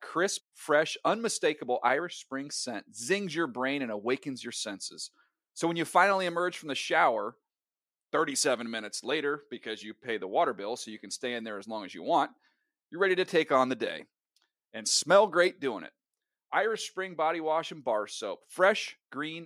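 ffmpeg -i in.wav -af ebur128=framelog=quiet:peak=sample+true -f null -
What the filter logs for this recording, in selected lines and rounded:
Integrated loudness:
  I:         -29.8 LUFS
  Threshold: -40.1 LUFS
Loudness range:
  LRA:         5.2 LU
  Threshold: -50.4 LUFS
  LRA low:   -33.4 LUFS
  LRA high:  -28.1 LUFS
Sample peak:
  Peak:       -8.2 dBFS
True peak:
  Peak:       -8.2 dBFS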